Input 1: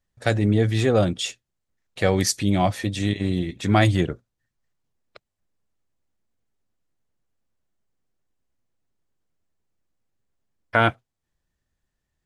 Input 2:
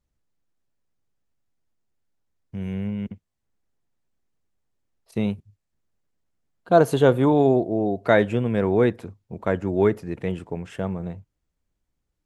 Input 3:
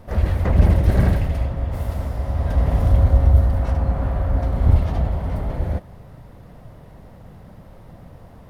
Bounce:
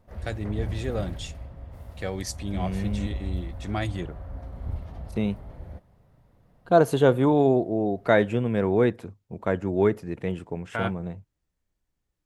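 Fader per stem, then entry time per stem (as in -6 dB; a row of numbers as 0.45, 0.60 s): -11.5, -2.0, -17.5 dB; 0.00, 0.00, 0.00 s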